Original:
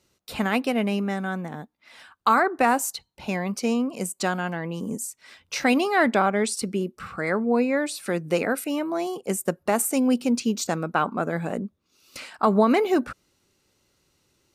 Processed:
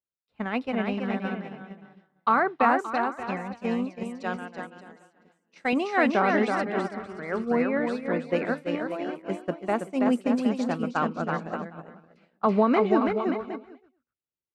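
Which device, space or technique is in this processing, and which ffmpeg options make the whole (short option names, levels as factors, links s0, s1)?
hearing-loss simulation: -filter_complex "[0:a]asettb=1/sr,asplit=3[s0][s1][s2];[s0]atrim=end=4.034[s3];[s1]atrim=start=4.03:end=5.73,asetpts=PTS-STARTPTS,afade=t=in:d=0.004:c=qsin,afade=t=out:st=1.696:d=0.004:c=qsin,bass=f=250:g=-10,treble=f=4000:g=5[s4];[s2]atrim=start=5.726[s5];[s3][s4]acrossfade=d=0.004:c1=hsin:c2=qsin[s6];[s6][s5]acrossfade=d=0.004:c1=qsin:c2=hsin,lowpass=2900,aecho=1:1:330|577.5|763.1|902.3|1007:0.631|0.398|0.251|0.158|0.1,agate=range=0.0224:threshold=0.112:ratio=3:detection=peak,volume=0.75"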